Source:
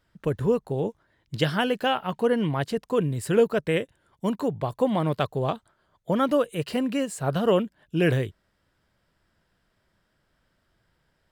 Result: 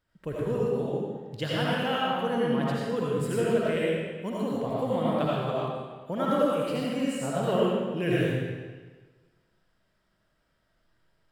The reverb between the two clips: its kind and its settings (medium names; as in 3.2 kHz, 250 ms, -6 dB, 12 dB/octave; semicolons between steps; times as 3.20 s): algorithmic reverb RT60 1.4 s, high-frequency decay 0.9×, pre-delay 40 ms, DRR -6.5 dB; trim -9 dB